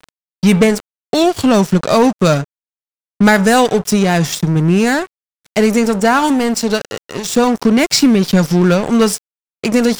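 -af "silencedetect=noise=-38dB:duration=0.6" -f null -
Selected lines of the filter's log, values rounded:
silence_start: 2.44
silence_end: 3.20 | silence_duration: 0.76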